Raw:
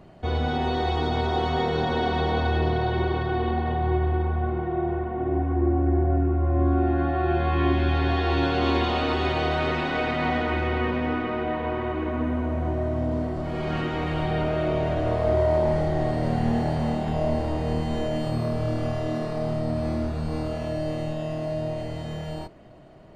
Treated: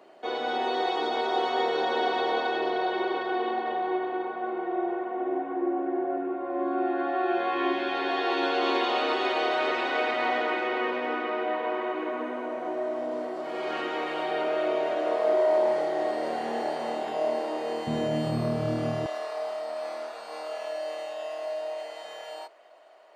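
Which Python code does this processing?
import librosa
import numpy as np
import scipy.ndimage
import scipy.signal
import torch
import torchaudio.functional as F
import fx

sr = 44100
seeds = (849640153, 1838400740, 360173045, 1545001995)

y = fx.highpass(x, sr, hz=fx.steps((0.0, 350.0), (17.87, 130.0), (19.06, 570.0)), slope=24)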